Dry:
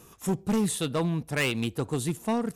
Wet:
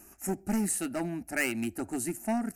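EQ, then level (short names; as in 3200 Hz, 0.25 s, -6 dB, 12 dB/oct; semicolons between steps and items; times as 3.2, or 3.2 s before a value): high shelf 6000 Hz +4.5 dB; fixed phaser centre 710 Hz, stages 8; 0.0 dB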